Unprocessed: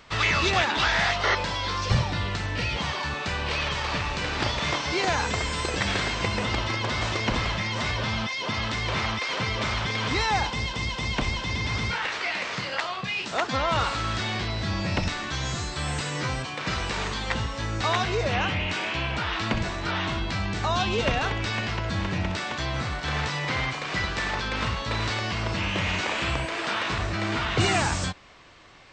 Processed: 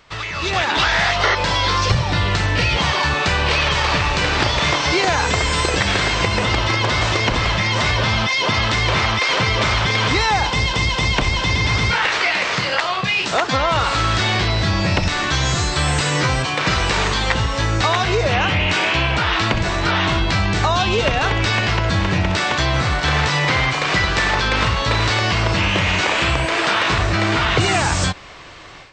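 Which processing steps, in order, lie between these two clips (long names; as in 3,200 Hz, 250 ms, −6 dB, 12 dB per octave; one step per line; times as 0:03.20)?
downward compressor, threshold −26 dBFS, peak gain reduction 9 dB
parametric band 230 Hz −5.5 dB 0.34 octaves
automatic gain control gain up to 13 dB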